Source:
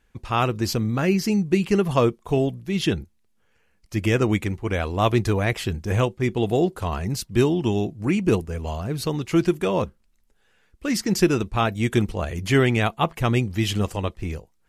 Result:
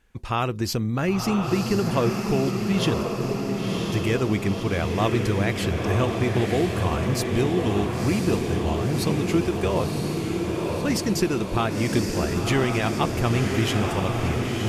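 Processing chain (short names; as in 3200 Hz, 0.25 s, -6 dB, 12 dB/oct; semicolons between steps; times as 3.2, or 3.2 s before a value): compressor 2:1, threshold -25 dBFS, peak gain reduction 7.5 dB; diffused feedback echo 1.022 s, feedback 66%, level -3 dB; gain +1.5 dB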